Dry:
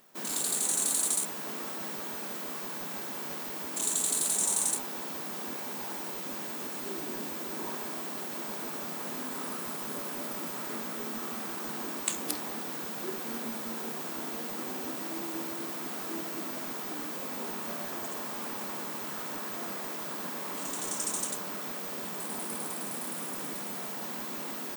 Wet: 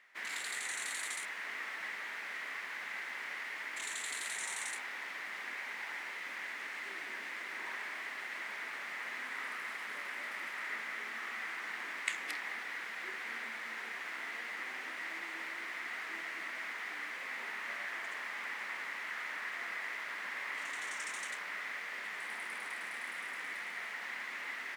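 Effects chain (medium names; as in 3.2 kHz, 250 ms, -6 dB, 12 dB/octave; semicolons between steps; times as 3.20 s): band-pass filter 2 kHz, Q 5.6; trim +12.5 dB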